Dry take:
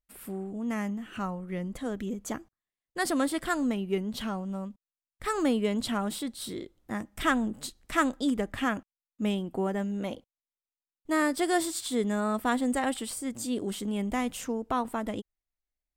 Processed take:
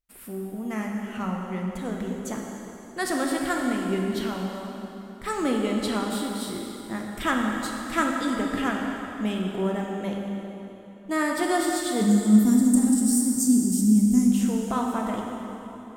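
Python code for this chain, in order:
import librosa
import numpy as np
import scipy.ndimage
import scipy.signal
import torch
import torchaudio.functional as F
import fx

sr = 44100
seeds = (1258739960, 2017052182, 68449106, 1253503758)

y = fx.curve_eq(x, sr, hz=(120.0, 230.0, 470.0, 3400.0, 5500.0), db=(0, 13, -14, -19, 10), at=(12.01, 14.31))
y = fx.rev_plate(y, sr, seeds[0], rt60_s=3.4, hf_ratio=0.8, predelay_ms=0, drr_db=-0.5)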